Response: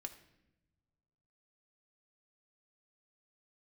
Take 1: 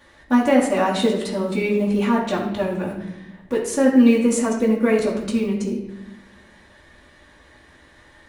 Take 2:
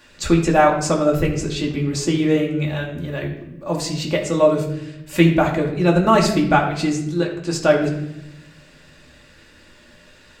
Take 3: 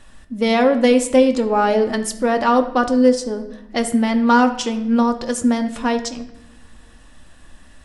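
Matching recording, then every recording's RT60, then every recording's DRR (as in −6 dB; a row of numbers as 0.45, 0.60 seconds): 3; 0.85, 0.85, 0.95 seconds; −8.0, −1.5, 5.5 decibels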